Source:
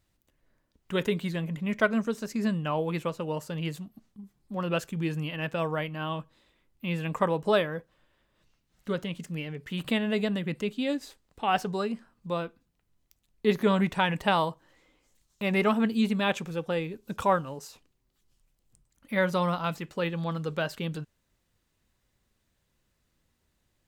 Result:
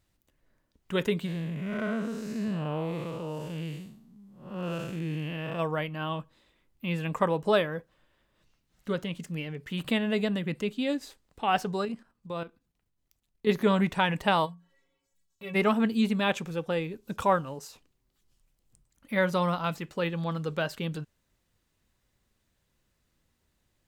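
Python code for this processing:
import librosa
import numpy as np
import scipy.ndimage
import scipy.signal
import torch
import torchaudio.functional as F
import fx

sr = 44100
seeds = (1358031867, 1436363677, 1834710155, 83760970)

y = fx.spec_blur(x, sr, span_ms=231.0, at=(1.25, 5.58), fade=0.02)
y = fx.level_steps(y, sr, step_db=11, at=(11.85, 13.49))
y = fx.stiff_resonator(y, sr, f0_hz=82.0, decay_s=0.4, stiffness=0.03, at=(14.45, 15.54), fade=0.02)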